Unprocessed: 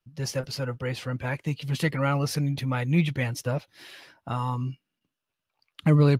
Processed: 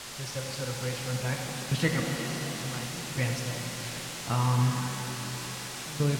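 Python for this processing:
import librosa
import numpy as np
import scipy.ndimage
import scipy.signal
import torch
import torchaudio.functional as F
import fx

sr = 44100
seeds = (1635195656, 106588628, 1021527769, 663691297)

y = fx.tremolo_random(x, sr, seeds[0], hz=3.5, depth_pct=95)
y = fx.dmg_noise_colour(y, sr, seeds[1], colour='white', level_db=-38.0)
y = scipy.signal.sosfilt(scipy.signal.butter(2, 7800.0, 'lowpass', fs=sr, output='sos'), y)
y = fx.rev_shimmer(y, sr, seeds[2], rt60_s=3.9, semitones=7, shimmer_db=-8, drr_db=1.5)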